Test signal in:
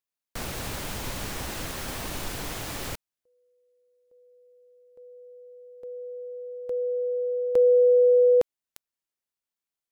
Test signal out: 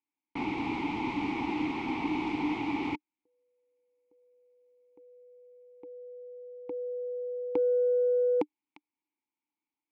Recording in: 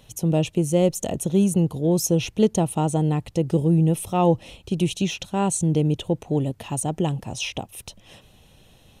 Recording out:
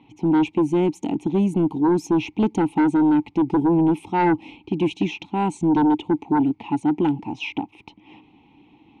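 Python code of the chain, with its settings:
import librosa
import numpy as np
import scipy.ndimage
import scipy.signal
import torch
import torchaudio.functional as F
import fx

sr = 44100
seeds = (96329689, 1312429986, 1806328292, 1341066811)

y = fx.env_lowpass(x, sr, base_hz=3000.0, full_db=-15.5)
y = fx.vowel_filter(y, sr, vowel='u')
y = fx.fold_sine(y, sr, drive_db=7, ceiling_db=-19.5)
y = y * librosa.db_to_amplitude(5.5)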